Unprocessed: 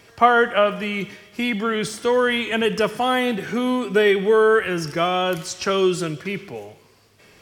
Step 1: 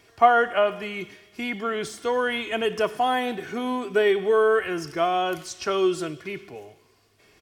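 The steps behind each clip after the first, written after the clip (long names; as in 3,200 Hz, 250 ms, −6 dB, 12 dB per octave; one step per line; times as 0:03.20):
comb filter 2.8 ms, depth 37%
dynamic equaliser 770 Hz, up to +5 dB, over −31 dBFS, Q 1
level −7 dB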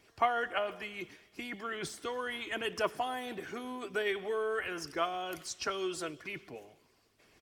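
harmonic and percussive parts rebalanced harmonic −12 dB
level −2.5 dB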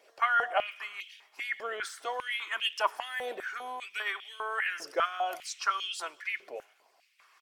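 high-pass on a step sequencer 5 Hz 550–3,000 Hz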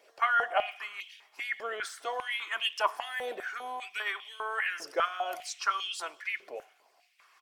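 on a send at −2 dB: formant resonators in series a + convolution reverb RT60 0.35 s, pre-delay 4 ms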